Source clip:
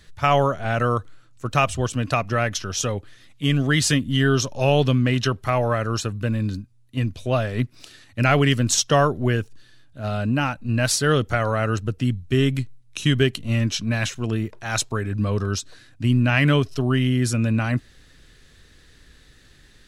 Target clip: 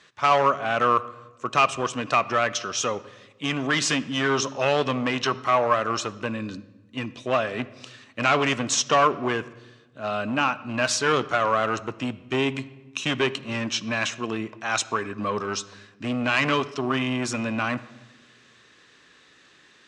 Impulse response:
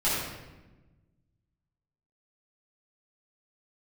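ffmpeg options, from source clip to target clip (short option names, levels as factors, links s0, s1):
-filter_complex "[0:a]asoftclip=type=hard:threshold=0.158,highpass=280,equalizer=f=1100:t=q:w=4:g=9,equalizer=f=2600:t=q:w=4:g=4,equalizer=f=4500:t=q:w=4:g=-4,lowpass=f=7400:w=0.5412,lowpass=f=7400:w=1.3066,asplit=2[s0][s1];[1:a]atrim=start_sample=2205,lowpass=6800[s2];[s1][s2]afir=irnorm=-1:irlink=0,volume=0.0447[s3];[s0][s3]amix=inputs=2:normalize=0"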